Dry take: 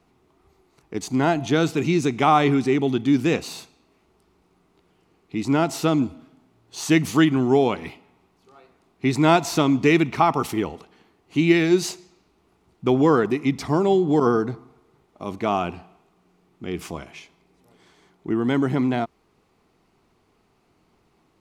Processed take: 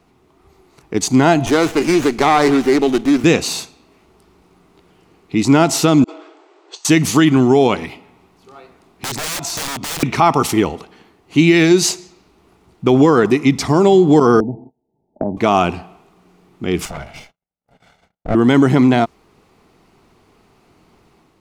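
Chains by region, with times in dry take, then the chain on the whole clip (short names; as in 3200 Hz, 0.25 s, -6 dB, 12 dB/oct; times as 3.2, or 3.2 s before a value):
1.46–3.24 HPF 300 Hz + compressor 2.5:1, threshold -19 dBFS + running maximum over 9 samples
6.04–6.85 brick-wall FIR band-pass 300–8500 Hz + high shelf 5700 Hz -8 dB + negative-ratio compressor -45 dBFS, ratio -0.5
7.85–10.03 wrapped overs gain 19 dB + compressor 4:1, threshold -36 dBFS
14.4–15.37 gate -50 dBFS, range -28 dB + rippled Chebyshev low-pass 910 Hz, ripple 6 dB + three-band squash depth 100%
16.85–18.35 minimum comb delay 1.4 ms + gate -59 dBFS, range -41 dB + high shelf 3200 Hz -8.5 dB
whole clip: AGC gain up to 4 dB; dynamic EQ 6900 Hz, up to +5 dB, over -43 dBFS, Q 0.77; maximiser +7.5 dB; gain -1 dB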